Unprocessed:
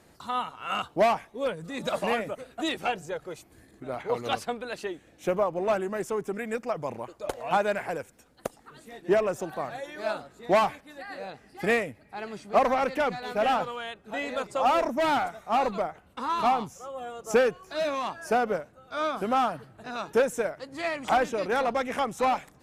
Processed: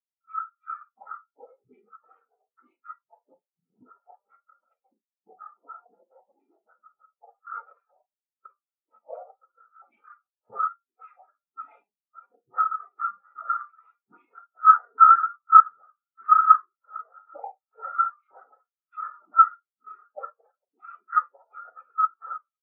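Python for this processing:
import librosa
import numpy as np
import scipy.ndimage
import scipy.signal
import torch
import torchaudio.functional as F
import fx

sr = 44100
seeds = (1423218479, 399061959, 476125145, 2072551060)

y = fx.pitch_ramps(x, sr, semitones=10.0, every_ms=327)
y = fx.recorder_agc(y, sr, target_db=-17.5, rise_db_per_s=43.0, max_gain_db=30)
y = fx.echo_wet_highpass(y, sr, ms=995, feedback_pct=65, hz=1700.0, wet_db=-12.5)
y = fx.noise_vocoder(y, sr, seeds[0], bands=6)
y = fx.peak_eq(y, sr, hz=1300.0, db=13.0, octaves=0.32)
y = fx.rev_schroeder(y, sr, rt60_s=0.48, comb_ms=32, drr_db=3.0)
y = fx.dynamic_eq(y, sr, hz=2400.0, q=3.6, threshold_db=-41.0, ratio=4.0, max_db=7)
y = fx.spectral_expand(y, sr, expansion=4.0)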